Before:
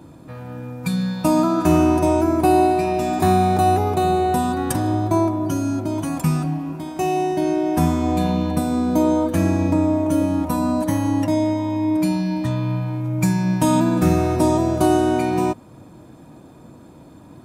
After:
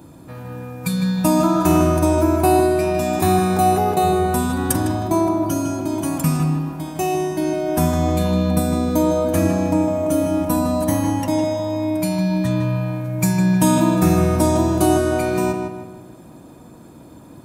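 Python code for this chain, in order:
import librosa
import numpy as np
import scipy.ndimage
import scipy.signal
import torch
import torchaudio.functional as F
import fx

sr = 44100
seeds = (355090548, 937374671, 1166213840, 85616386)

p1 = fx.high_shelf(x, sr, hz=7600.0, db=10.0)
y = p1 + fx.echo_filtered(p1, sr, ms=156, feedback_pct=44, hz=3100.0, wet_db=-5.0, dry=0)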